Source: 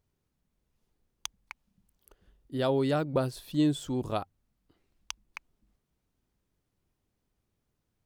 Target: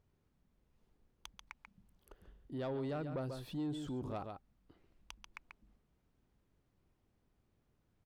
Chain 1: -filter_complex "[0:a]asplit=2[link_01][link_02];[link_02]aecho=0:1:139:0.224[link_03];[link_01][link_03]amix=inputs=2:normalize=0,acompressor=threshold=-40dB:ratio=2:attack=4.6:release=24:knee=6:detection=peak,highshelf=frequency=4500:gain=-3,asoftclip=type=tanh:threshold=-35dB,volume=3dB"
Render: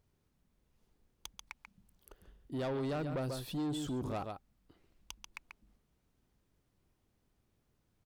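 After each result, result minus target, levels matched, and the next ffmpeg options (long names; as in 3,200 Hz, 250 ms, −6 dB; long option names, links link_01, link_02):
8,000 Hz band +6.5 dB; downward compressor: peak gain reduction −5.5 dB
-filter_complex "[0:a]asplit=2[link_01][link_02];[link_02]aecho=0:1:139:0.224[link_03];[link_01][link_03]amix=inputs=2:normalize=0,acompressor=threshold=-40dB:ratio=2:attack=4.6:release=24:knee=6:detection=peak,highshelf=frequency=4500:gain=-13,asoftclip=type=tanh:threshold=-35dB,volume=3dB"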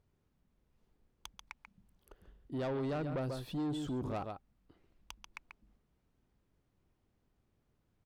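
downward compressor: peak gain reduction −5.5 dB
-filter_complex "[0:a]asplit=2[link_01][link_02];[link_02]aecho=0:1:139:0.224[link_03];[link_01][link_03]amix=inputs=2:normalize=0,acompressor=threshold=-51dB:ratio=2:attack=4.6:release=24:knee=6:detection=peak,highshelf=frequency=4500:gain=-13,asoftclip=type=tanh:threshold=-35dB,volume=3dB"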